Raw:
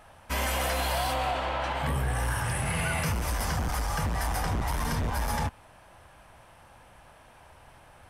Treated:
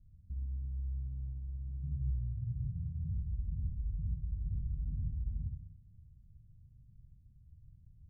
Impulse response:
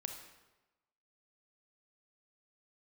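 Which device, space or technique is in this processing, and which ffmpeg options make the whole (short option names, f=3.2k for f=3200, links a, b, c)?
club heard from the street: -filter_complex "[0:a]alimiter=level_in=3.5dB:limit=-24dB:level=0:latency=1,volume=-3.5dB,lowpass=f=150:w=0.5412,lowpass=f=150:w=1.3066[a];[1:a]atrim=start_sample=2205[b];[a][b]afir=irnorm=-1:irlink=0,volume=3dB"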